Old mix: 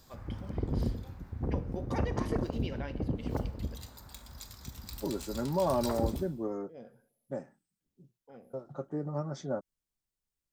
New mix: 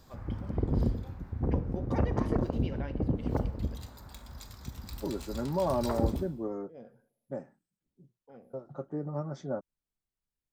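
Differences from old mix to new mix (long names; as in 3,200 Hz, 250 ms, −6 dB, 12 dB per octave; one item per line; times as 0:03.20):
background +3.5 dB
master: add high-shelf EQ 2,900 Hz −8 dB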